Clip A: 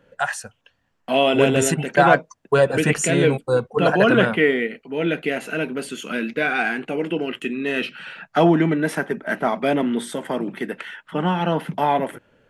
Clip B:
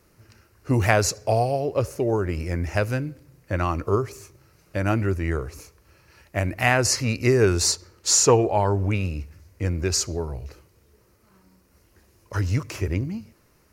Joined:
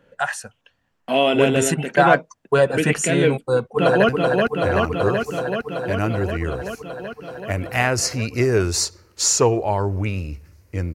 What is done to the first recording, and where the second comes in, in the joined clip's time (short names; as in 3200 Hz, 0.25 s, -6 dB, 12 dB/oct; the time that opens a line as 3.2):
clip A
3.37–4.09 echo throw 0.38 s, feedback 80%, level -3 dB
4.09 switch to clip B from 2.96 s